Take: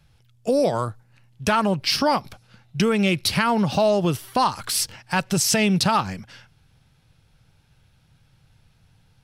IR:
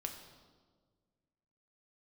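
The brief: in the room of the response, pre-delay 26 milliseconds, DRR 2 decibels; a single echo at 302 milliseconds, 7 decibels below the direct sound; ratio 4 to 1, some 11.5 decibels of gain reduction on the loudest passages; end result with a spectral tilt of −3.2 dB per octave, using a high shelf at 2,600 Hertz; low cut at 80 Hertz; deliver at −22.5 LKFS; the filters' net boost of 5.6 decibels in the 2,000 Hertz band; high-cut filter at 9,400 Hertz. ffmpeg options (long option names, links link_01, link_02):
-filter_complex "[0:a]highpass=80,lowpass=9400,equalizer=frequency=2000:width_type=o:gain=4,highshelf=frequency=2600:gain=7,acompressor=threshold=-27dB:ratio=4,aecho=1:1:302:0.447,asplit=2[link_01][link_02];[1:a]atrim=start_sample=2205,adelay=26[link_03];[link_02][link_03]afir=irnorm=-1:irlink=0,volume=-0.5dB[link_04];[link_01][link_04]amix=inputs=2:normalize=0,volume=4dB"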